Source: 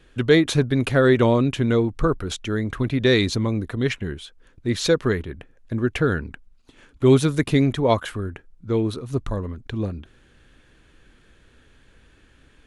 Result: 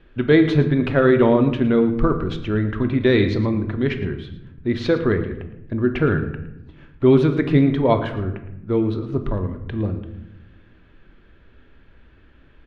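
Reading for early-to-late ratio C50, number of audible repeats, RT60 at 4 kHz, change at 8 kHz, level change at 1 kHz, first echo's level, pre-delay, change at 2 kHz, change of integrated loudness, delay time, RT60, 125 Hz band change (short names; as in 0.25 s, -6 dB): 9.5 dB, 1, 0.55 s, under -20 dB, +1.5 dB, -15.5 dB, 3 ms, 0.0 dB, +2.0 dB, 0.112 s, 0.90 s, +1.5 dB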